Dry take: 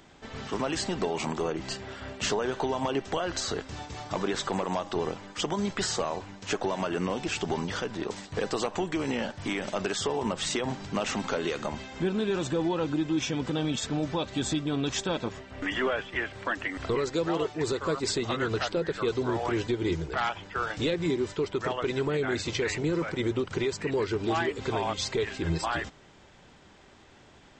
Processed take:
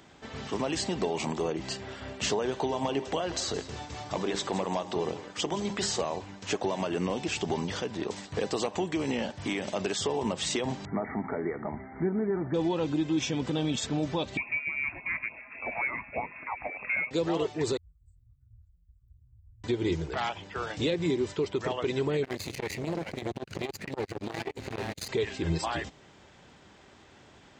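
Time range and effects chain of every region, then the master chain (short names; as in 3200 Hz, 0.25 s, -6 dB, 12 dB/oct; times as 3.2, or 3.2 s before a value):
2.68–6.01 notches 50/100/150/200/250/300/350/400 Hz + echo 0.17 s -15 dB
10.85–12.54 brick-wall FIR low-pass 2300 Hz + notch comb 530 Hz
14.37–17.11 bell 68 Hz -4 dB 2.7 oct + inverted band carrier 2600 Hz + LFO notch sine 3.4 Hz 370–1800 Hz
17.77–19.64 inverse Chebyshev band-stop 280–6000 Hz, stop band 70 dB + comb 3.4 ms, depth 55%
22.24–25.09 minimum comb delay 0.46 ms + core saturation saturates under 610 Hz
whole clip: HPF 53 Hz; dynamic EQ 1400 Hz, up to -7 dB, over -48 dBFS, Q 2.3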